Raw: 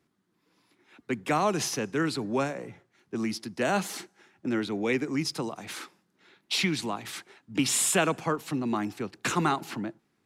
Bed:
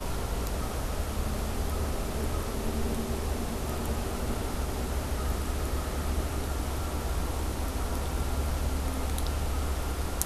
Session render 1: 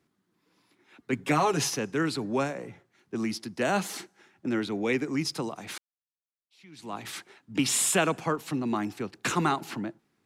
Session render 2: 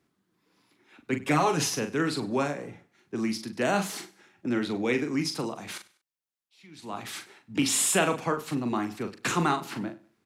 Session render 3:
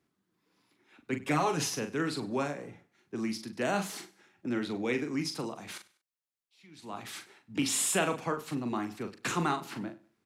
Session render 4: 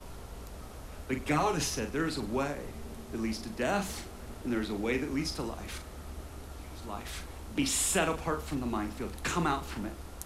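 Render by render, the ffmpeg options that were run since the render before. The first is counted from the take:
ffmpeg -i in.wav -filter_complex "[0:a]asettb=1/sr,asplit=3[link_01][link_02][link_03];[link_01]atrim=end=1.124[link_04];[link_02]atrim=start=1.12:end=1.7,asetpts=PTS-STARTPTS,afade=type=in:duration=0.004:curve=qsin,afade=type=out:start_time=0.576:duration=0.004:curve=qsin,aecho=1:1:7.2:0.8,atrim=end_sample=25578[link_05];[link_03]atrim=start=1.696[link_06];[link_04][link_05]acrossfade=duration=0.004:curve1=hsin:curve2=qsin[link_07];[link_07][link_06]acrossfade=duration=0.004:curve1=qsin:curve2=hsin,asplit=2[link_08][link_09];[link_08]atrim=end=5.78,asetpts=PTS-STARTPTS,afade=type=out:start_time=5.776:duration=0.004:curve=hsin[link_10];[link_09]atrim=start=5.78,asetpts=PTS-STARTPTS,afade=type=in:duration=1.19:curve=exp[link_11];[link_10][link_11]concat=n=2:v=0:a=1" out.wav
ffmpeg -i in.wav -filter_complex "[0:a]asplit=2[link_01][link_02];[link_02]adelay=41,volume=-7.5dB[link_03];[link_01][link_03]amix=inputs=2:normalize=0,aecho=1:1:98|196:0.0944|0.0302" out.wav
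ffmpeg -i in.wav -af "volume=-4.5dB" out.wav
ffmpeg -i in.wav -i bed.wav -filter_complex "[1:a]volume=-13dB[link_01];[0:a][link_01]amix=inputs=2:normalize=0" out.wav

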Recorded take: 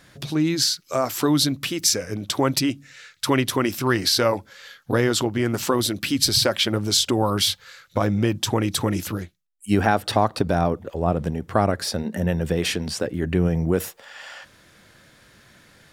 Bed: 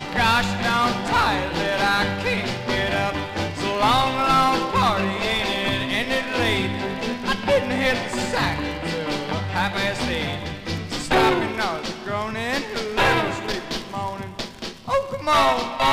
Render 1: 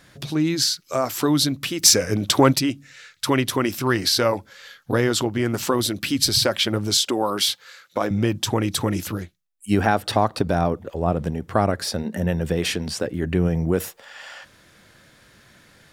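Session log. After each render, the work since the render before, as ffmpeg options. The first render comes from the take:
ffmpeg -i in.wav -filter_complex "[0:a]asettb=1/sr,asplit=3[link_01][link_02][link_03];[link_01]atrim=end=1.834[link_04];[link_02]atrim=start=1.83:end=2.53,asetpts=PTS-STARTPTS,afade=type=in:duration=0.004:curve=qsin,afade=type=out:start_time=0.696:duration=0.004:curve=qsin,acontrast=71[link_05];[link_03]atrim=start=2.526[link_06];[link_04][link_05]acrossfade=duration=0.004:curve1=hsin:curve2=qsin[link_07];[link_07][link_06]acrossfade=duration=0.004:curve1=qsin:curve2=hsin,asettb=1/sr,asplit=3[link_08][link_09][link_10];[link_08]atrim=end=6.974[link_11];[link_09]atrim=start=6.97:end=8.11,asetpts=PTS-STARTPTS,afade=type=in:duration=0.004:curve=qsin,afade=type=out:start_time=1.136:duration=0.004:curve=qsin,highpass=260[link_12];[link_10]atrim=start=8.106[link_13];[link_11][link_12]acrossfade=duration=0.004:curve1=hsin:curve2=qsin[link_14];[link_14][link_13]acrossfade=duration=0.004:curve1=qsin:curve2=hsin" out.wav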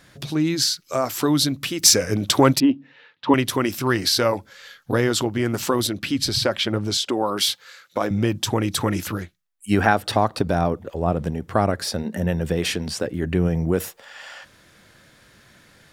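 ffmpeg -i in.wav -filter_complex "[0:a]asettb=1/sr,asplit=3[link_01][link_02][link_03];[link_01]atrim=end=2.604[link_04];[link_02]atrim=start=2.6:end=3.34,asetpts=PTS-STARTPTS,afade=type=in:duration=0.004:curve=qsin,afade=type=out:start_time=0.736:duration=0.004:curve=qsin,highpass=180,equalizer=frequency=260:width_type=q:width=4:gain=9,equalizer=frequency=460:width_type=q:width=4:gain=4,equalizer=frequency=910:width_type=q:width=4:gain=9,equalizer=frequency=1400:width_type=q:width=4:gain=-9,equalizer=frequency=2200:width_type=q:width=4:gain=-9,lowpass=frequency=3000:width=0.5412,lowpass=frequency=3000:width=1.3066[link_05];[link_03]atrim=start=3.336[link_06];[link_04][link_05]acrossfade=duration=0.004:curve1=hsin:curve2=qsin[link_07];[link_07][link_06]acrossfade=duration=0.004:curve1=qsin:curve2=hsin,asettb=1/sr,asplit=3[link_08][link_09][link_10];[link_08]atrim=end=5.874[link_11];[link_09]atrim=start=5.87:end=7.37,asetpts=PTS-STARTPTS,afade=type=in:duration=0.004:curve=qsin,afade=type=out:start_time=1.496:duration=0.004:curve=qsin,lowpass=frequency=3900:poles=1[link_12];[link_10]atrim=start=7.366[link_13];[link_11][link_12]acrossfade=duration=0.004:curve1=hsin:curve2=qsin[link_14];[link_14][link_13]acrossfade=duration=0.004:curve1=qsin:curve2=hsin,asettb=1/sr,asplit=3[link_15][link_16][link_17];[link_15]atrim=end=8.774[link_18];[link_16]atrim=start=8.77:end=9.93,asetpts=PTS-STARTPTS,afade=type=in:duration=0.004:curve=qsin,afade=type=out:start_time=1.156:duration=0.004:curve=qsin,equalizer=frequency=1500:width_type=o:width=1.6:gain=4.5[link_19];[link_17]atrim=start=9.926[link_20];[link_18][link_19]acrossfade=duration=0.004:curve1=hsin:curve2=qsin[link_21];[link_21][link_20]acrossfade=duration=0.004:curve1=qsin:curve2=hsin" out.wav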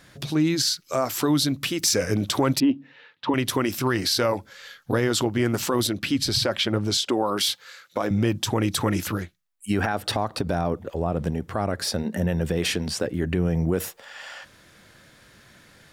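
ffmpeg -i in.wav -af "alimiter=limit=-12.5dB:level=0:latency=1:release=70" out.wav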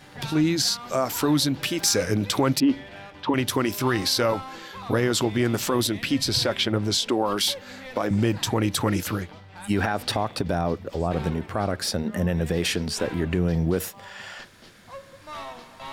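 ffmpeg -i in.wav -i bed.wav -filter_complex "[1:a]volume=-20dB[link_01];[0:a][link_01]amix=inputs=2:normalize=0" out.wav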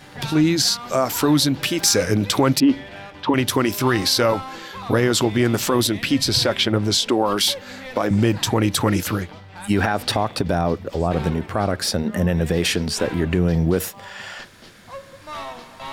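ffmpeg -i in.wav -af "volume=4.5dB" out.wav

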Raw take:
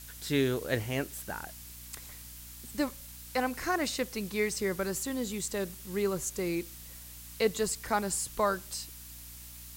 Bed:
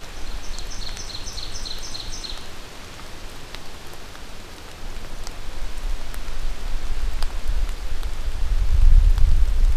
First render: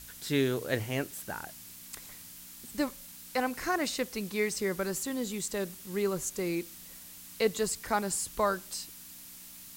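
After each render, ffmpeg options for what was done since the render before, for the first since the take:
ffmpeg -i in.wav -af "bandreject=frequency=60:width_type=h:width=4,bandreject=frequency=120:width_type=h:width=4" out.wav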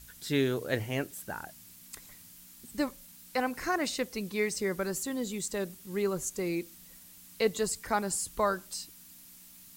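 ffmpeg -i in.wav -af "afftdn=noise_reduction=6:noise_floor=-49" out.wav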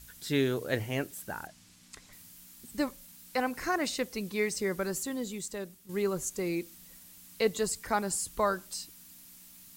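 ffmpeg -i in.wav -filter_complex "[0:a]asettb=1/sr,asplit=3[link_01][link_02][link_03];[link_01]atrim=end=1.474[link_04];[link_02]atrim=start=1.47:end=2.13,asetpts=PTS-STARTPTS,afade=type=in:duration=0.004:curve=qsin,afade=type=out:start_time=0.656:duration=0.004:curve=qsin,lowpass=7000[link_05];[link_03]atrim=start=2.126[link_06];[link_04][link_05]acrossfade=duration=0.004:curve1=hsin:curve2=qsin[link_07];[link_07][link_06]acrossfade=duration=0.004:curve1=qsin:curve2=hsin,asplit=2[link_08][link_09];[link_08]atrim=end=5.89,asetpts=PTS-STARTPTS,afade=type=out:start_time=4.99:duration=0.9:silence=0.354813[link_10];[link_09]atrim=start=5.89,asetpts=PTS-STARTPTS,afade=type=in:duration=0.004:curve=hsin:silence=0.354813[link_11];[link_10][link_11]concat=n=2:v=0:a=1" out.wav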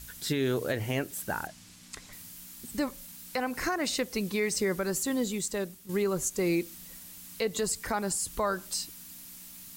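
ffmpeg -i in.wav -af "acontrast=48,alimiter=limit=-19.5dB:level=0:latency=1:release=155" out.wav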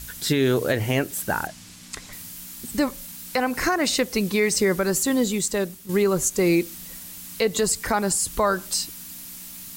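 ffmpeg -i in.wav -af "volume=8dB" out.wav

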